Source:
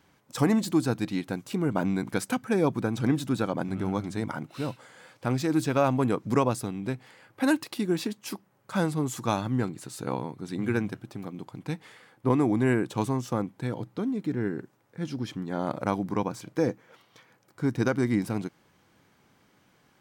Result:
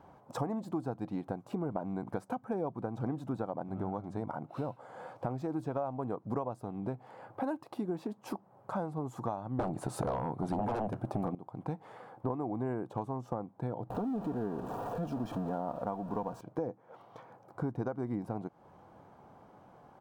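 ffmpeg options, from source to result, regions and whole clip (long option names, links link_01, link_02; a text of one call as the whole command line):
ffmpeg -i in.wav -filter_complex "[0:a]asettb=1/sr,asplit=3[link_01][link_02][link_03];[link_01]atrim=end=9.594[link_04];[link_02]atrim=start=9.59:end=11.35,asetpts=PTS-STARTPTS,afade=type=in:duration=0.004:curve=qsin,afade=type=out:start_time=1.756:duration=0.004:curve=qsin,aeval=exprs='0.2*sin(PI/2*5.62*val(0)/0.2)':channel_layout=same,equalizer=frequency=9400:width=4.1:gain=6.5[link_05];[link_03]atrim=start=11.346[link_06];[link_04][link_05]acrossfade=duration=0.004:curve1=hsin:curve2=qsin[link_07];[link_07][link_06]acrossfade=duration=0.004:curve1=qsin:curve2=hsin,asettb=1/sr,asplit=3[link_08][link_09][link_10];[link_08]atrim=end=13.904[link_11];[link_09]atrim=start=13.9:end=16.41,asetpts=PTS-STARTPTS,afade=type=in:duration=0.004:curve=qsin,afade=type=out:start_time=2.506:duration=0.004:curve=qsin,aeval=exprs='val(0)+0.5*0.0282*sgn(val(0))':channel_layout=same,asuperstop=centerf=2100:order=4:qfactor=5.7,aecho=1:1:4.3:0.33,atrim=end_sample=110691[link_12];[link_10]atrim=start=16.406[link_13];[link_11][link_12]acrossfade=duration=0.004:curve1=hsin:curve2=qsin[link_14];[link_14][link_13]acrossfade=duration=0.004:curve1=qsin:curve2=hsin,firequalizer=gain_entry='entry(290,0);entry(720,13);entry(1900,-8);entry(4700,-12)':delay=0.05:min_phase=1,acompressor=threshold=-39dB:ratio=4,lowshelf=frequency=480:gain=5.5" out.wav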